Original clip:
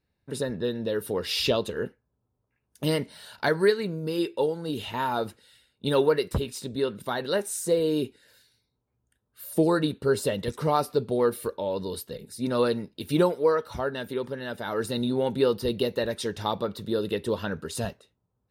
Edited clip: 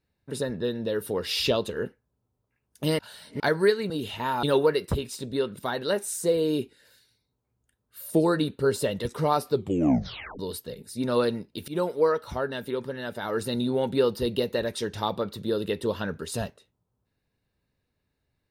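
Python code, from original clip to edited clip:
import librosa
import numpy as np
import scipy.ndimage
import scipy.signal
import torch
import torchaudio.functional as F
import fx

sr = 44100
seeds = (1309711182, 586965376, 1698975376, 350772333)

y = fx.edit(x, sr, fx.reverse_span(start_s=2.99, length_s=0.41),
    fx.cut(start_s=3.9, length_s=0.74),
    fx.cut(start_s=5.17, length_s=0.69),
    fx.tape_stop(start_s=10.96, length_s=0.86),
    fx.fade_in_from(start_s=13.11, length_s=0.25, floor_db=-20.0), tone=tone)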